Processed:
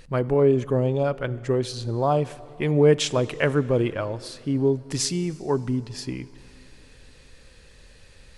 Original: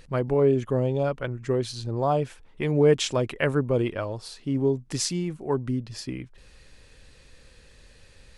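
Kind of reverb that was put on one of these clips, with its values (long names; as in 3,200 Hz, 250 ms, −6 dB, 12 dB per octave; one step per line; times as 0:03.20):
dense smooth reverb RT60 3.1 s, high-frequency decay 0.75×, DRR 17 dB
level +2 dB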